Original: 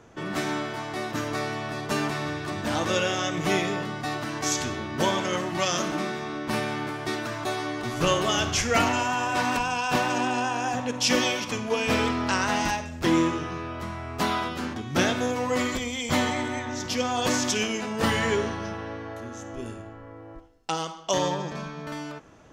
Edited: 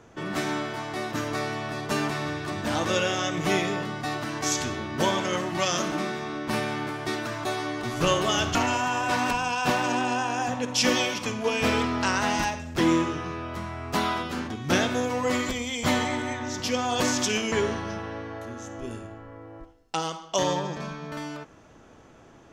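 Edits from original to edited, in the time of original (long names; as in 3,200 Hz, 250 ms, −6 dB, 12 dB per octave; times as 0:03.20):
0:08.55–0:08.81: remove
0:17.78–0:18.27: remove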